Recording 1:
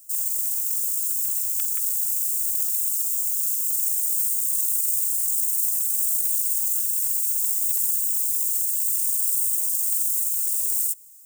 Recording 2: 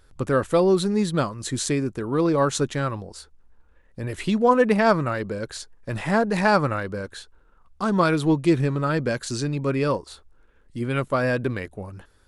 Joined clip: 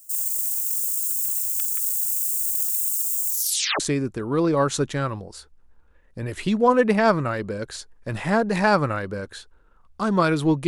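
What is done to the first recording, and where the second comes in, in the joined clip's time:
recording 1
0:03.29: tape stop 0.51 s
0:03.80: continue with recording 2 from 0:01.61

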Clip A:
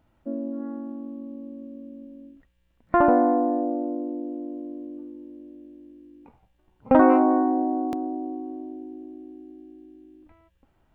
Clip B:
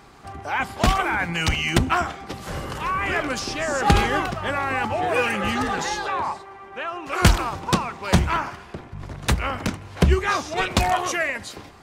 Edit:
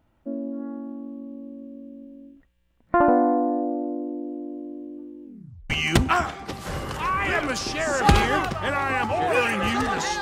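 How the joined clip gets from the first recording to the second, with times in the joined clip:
clip A
0:05.24: tape stop 0.46 s
0:05.70: continue with clip B from 0:01.51

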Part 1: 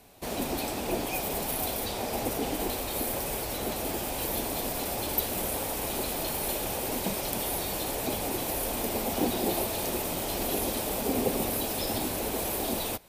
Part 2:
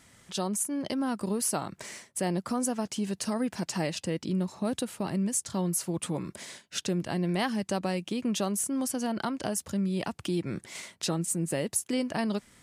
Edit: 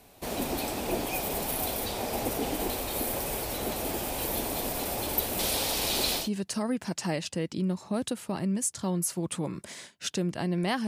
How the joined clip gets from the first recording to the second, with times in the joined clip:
part 1
0:05.39–0:06.29: parametric band 4,300 Hz +12.5 dB 1.5 octaves
0:06.22: continue with part 2 from 0:02.93, crossfade 0.14 s

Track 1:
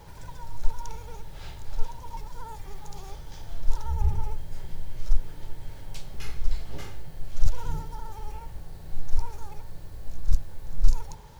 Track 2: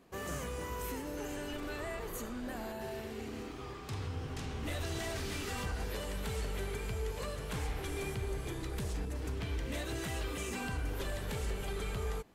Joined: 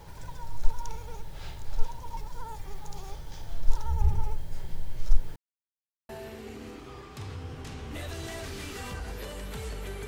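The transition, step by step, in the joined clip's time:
track 1
0:05.36–0:06.09: silence
0:06.09: continue with track 2 from 0:02.81

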